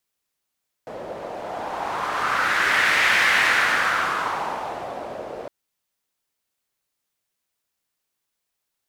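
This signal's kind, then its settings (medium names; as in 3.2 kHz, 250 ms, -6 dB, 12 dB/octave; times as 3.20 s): wind-like swept noise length 4.61 s, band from 560 Hz, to 1.9 kHz, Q 2.8, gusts 1, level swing 16 dB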